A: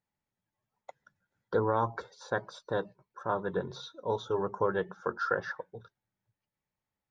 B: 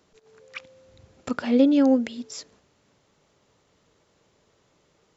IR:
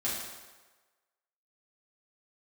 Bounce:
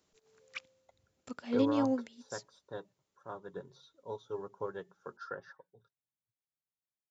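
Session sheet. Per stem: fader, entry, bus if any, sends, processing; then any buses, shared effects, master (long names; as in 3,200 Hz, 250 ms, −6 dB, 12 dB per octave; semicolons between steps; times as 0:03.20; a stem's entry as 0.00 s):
−9.0 dB, 0.00 s, no send, high-pass filter 200 Hz 6 dB per octave; low-shelf EQ 400 Hz +8 dB; comb filter 7.3 ms, depth 31%
−1.5 dB, 0.00 s, no send, automatic ducking −9 dB, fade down 0.35 s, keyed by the first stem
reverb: not used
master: high-shelf EQ 4,400 Hz +9.5 dB; expander for the loud parts 1.5 to 1, over −47 dBFS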